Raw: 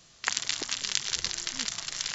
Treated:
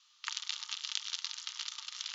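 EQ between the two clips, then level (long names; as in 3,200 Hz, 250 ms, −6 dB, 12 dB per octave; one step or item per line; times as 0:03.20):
Chebyshev high-pass with heavy ripple 870 Hz, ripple 9 dB
Butterworth low-pass 7,000 Hz 48 dB per octave
−4.0 dB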